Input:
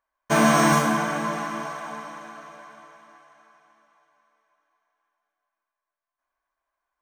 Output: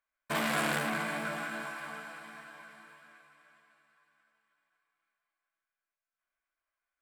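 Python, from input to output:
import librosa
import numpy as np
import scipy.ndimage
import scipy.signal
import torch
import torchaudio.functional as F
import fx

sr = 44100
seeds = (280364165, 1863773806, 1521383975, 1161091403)

p1 = fx.formant_shift(x, sr, semitones=5)
p2 = p1 + fx.echo_feedback(p1, sr, ms=542, feedback_pct=51, wet_db=-21.0, dry=0)
p3 = fx.transformer_sat(p2, sr, knee_hz=2300.0)
y = p3 * librosa.db_to_amplitude(-7.5)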